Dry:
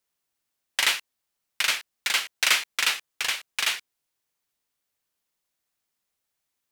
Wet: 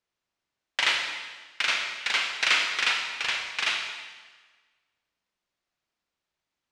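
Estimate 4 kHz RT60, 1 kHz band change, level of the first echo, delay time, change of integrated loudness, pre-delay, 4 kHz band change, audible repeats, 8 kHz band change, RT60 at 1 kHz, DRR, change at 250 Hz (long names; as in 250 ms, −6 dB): 1.3 s, +1.5 dB, no echo audible, no echo audible, −1.0 dB, 22 ms, −1.0 dB, no echo audible, −8.0 dB, 1.4 s, 2.0 dB, +2.0 dB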